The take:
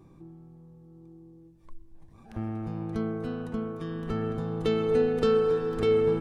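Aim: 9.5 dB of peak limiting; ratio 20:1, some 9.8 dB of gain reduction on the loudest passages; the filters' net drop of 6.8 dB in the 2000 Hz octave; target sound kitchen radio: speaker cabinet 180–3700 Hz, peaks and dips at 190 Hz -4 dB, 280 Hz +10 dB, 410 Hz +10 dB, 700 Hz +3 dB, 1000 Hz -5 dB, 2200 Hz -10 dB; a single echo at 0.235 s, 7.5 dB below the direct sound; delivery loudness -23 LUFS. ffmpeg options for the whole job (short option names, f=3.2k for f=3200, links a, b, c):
-af "equalizer=f=2k:t=o:g=-5,acompressor=threshold=-29dB:ratio=20,alimiter=level_in=6dB:limit=-24dB:level=0:latency=1,volume=-6dB,highpass=180,equalizer=f=190:t=q:w=4:g=-4,equalizer=f=280:t=q:w=4:g=10,equalizer=f=410:t=q:w=4:g=10,equalizer=f=700:t=q:w=4:g=3,equalizer=f=1k:t=q:w=4:g=-5,equalizer=f=2.2k:t=q:w=4:g=-10,lowpass=f=3.7k:w=0.5412,lowpass=f=3.7k:w=1.3066,aecho=1:1:235:0.422,volume=9dB"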